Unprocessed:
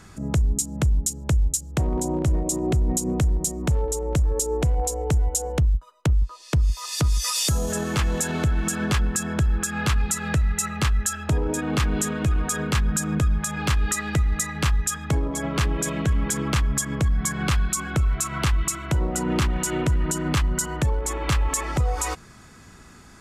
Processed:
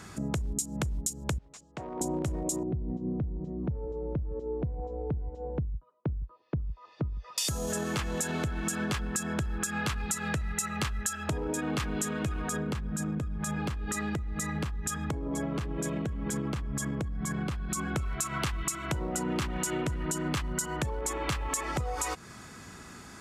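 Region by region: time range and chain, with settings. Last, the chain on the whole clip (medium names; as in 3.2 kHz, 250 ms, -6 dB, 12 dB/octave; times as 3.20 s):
1.38–2.01 s: high-pass 1.2 kHz 6 dB/octave + hard clipper -29.5 dBFS + tape spacing loss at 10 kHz 26 dB
2.63–7.38 s: band-pass filter 120 Hz, Q 0.52 + distance through air 280 m
12.49–17.96 s: tilt shelf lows +5.5 dB, about 830 Hz + compression, threshold -23 dBFS
whole clip: high-pass 110 Hz 6 dB/octave; compression 3:1, threshold -33 dBFS; trim +2 dB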